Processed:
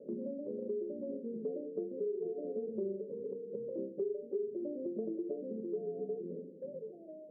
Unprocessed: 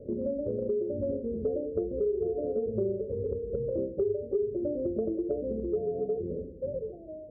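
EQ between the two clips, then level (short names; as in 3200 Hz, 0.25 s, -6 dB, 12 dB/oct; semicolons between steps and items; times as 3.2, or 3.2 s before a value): elliptic band-pass 180–1000 Hz, stop band 40 dB; dynamic EQ 610 Hz, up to -6 dB, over -43 dBFS, Q 1.2; -4.5 dB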